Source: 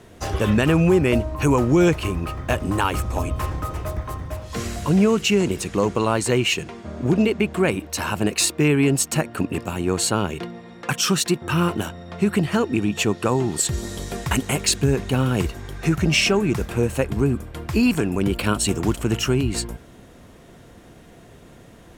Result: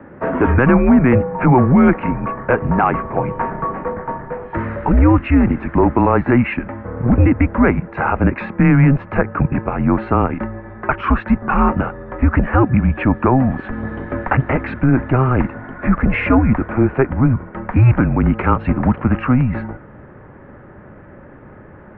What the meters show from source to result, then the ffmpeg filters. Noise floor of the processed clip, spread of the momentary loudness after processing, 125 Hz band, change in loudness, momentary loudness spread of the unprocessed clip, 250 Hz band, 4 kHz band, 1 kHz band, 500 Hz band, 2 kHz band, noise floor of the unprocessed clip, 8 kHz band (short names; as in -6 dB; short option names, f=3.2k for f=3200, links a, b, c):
-40 dBFS, 12 LU, +7.0 dB, +5.0 dB, 11 LU, +6.0 dB, under -15 dB, +9.0 dB, +2.5 dB, +4.0 dB, -47 dBFS, under -40 dB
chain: -af "asubboost=boost=2.5:cutoff=190,highpass=f=240:t=q:w=0.5412,highpass=f=240:t=q:w=1.307,lowpass=f=2k:t=q:w=0.5176,lowpass=f=2k:t=q:w=0.7071,lowpass=f=2k:t=q:w=1.932,afreqshift=-130,apsyclip=15.5dB,volume=-5dB"